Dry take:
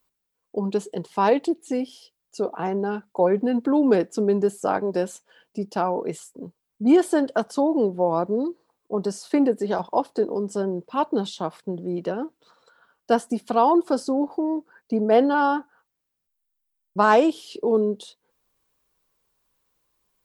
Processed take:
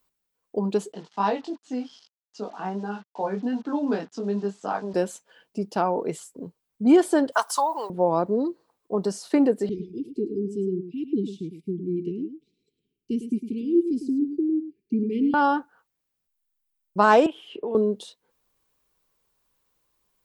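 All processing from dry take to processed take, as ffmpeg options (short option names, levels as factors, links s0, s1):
-filter_complex "[0:a]asettb=1/sr,asplit=3[s0][s1][s2];[s0]atrim=end=0.924[s3];[s1]atrim=start=0.92:end=4.94,asetpts=PTS-STARTPTS,afade=t=in:d=0.004:c=qsin,afade=t=out:st=4.016:d=0.004:c=qsin,flanger=delay=19:depth=2.3:speed=2.6,acrusher=bits=7:mix=0:aa=0.5,highpass=f=130:w=0.5412,highpass=f=130:w=1.3066,equalizer=f=140:t=q:w=4:g=-9,equalizer=f=360:t=q:w=4:g=-9,equalizer=f=520:t=q:w=4:g=-8,equalizer=f=2200:t=q:w=4:g=-6,lowpass=f=6100:w=0.5412,lowpass=f=6100:w=1.3066[s4];[s2]atrim=start=4.936[s5];[s3][s4]acrossfade=d=0.004:c1=hsin:c2=qsin[s6];[s6][s5]acrossfade=d=0.004:c1=qsin:c2=hsin,asettb=1/sr,asplit=3[s7][s8][s9];[s7]atrim=end=7.324[s10];[s8]atrim=start=7.32:end=7.9,asetpts=PTS-STARTPTS,afade=t=in:d=0.004:c=qsin,afade=t=out:st=0.576:d=0.004:c=qsin,highpass=f=1000:t=q:w=4,aemphasis=mode=production:type=75fm[s11];[s9]atrim=start=7.896[s12];[s10][s11]acrossfade=d=0.004:c1=hsin:c2=qsin[s13];[s13][s12]acrossfade=d=0.004:c1=qsin:c2=hsin,asettb=1/sr,asplit=3[s14][s15][s16];[s14]atrim=end=9.694[s17];[s15]atrim=start=9.69:end=15.34,asetpts=PTS-STARTPTS,afade=t=in:d=0.004:c=qsin,afade=t=out:st=5.646:d=0.004:c=qsin,asuperstop=centerf=970:order=20:qfactor=0.51,highshelf=f=2400:t=q:w=1.5:g=-13.5,aecho=1:1:105:0.316,atrim=end_sample=249165[s18];[s16]atrim=start=15.336[s19];[s17][s18]acrossfade=d=0.004:c1=hsin:c2=qsin[s20];[s20][s19]acrossfade=d=0.004:c1=qsin:c2=hsin,asettb=1/sr,asplit=3[s21][s22][s23];[s21]atrim=end=17.264[s24];[s22]atrim=start=17.26:end=17.75,asetpts=PTS-STARTPTS,afade=t=in:d=0.004:c=qsin,afade=t=out:st=0.486:d=0.004:c=qsin,highshelf=f=3700:t=q:w=3:g=-7,acrossover=split=580|2900[s25][s26][s27];[s25]acompressor=threshold=0.0224:ratio=4[s28];[s26]acompressor=threshold=0.0158:ratio=4[s29];[s27]acompressor=threshold=0.00158:ratio=4[s30];[s28][s29][s30]amix=inputs=3:normalize=0[s31];[s23]atrim=start=17.746[s32];[s24][s31]acrossfade=d=0.004:c1=hsin:c2=qsin[s33];[s33][s32]acrossfade=d=0.004:c1=qsin:c2=hsin"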